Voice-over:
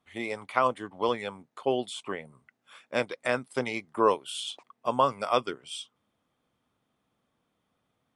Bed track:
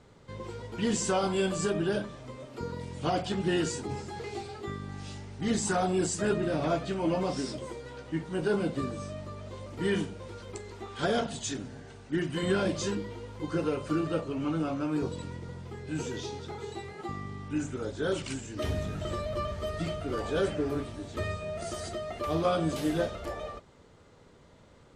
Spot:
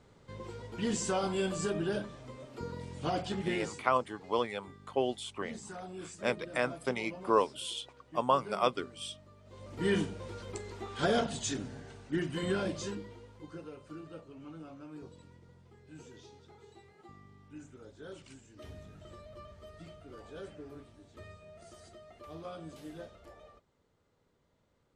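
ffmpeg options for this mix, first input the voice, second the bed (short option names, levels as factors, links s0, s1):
-filter_complex "[0:a]adelay=3300,volume=0.668[s0];[1:a]volume=3.98,afade=t=out:st=3.33:d=0.56:silence=0.237137,afade=t=in:st=9.44:d=0.47:silence=0.158489,afade=t=out:st=11.63:d=2.01:silence=0.149624[s1];[s0][s1]amix=inputs=2:normalize=0"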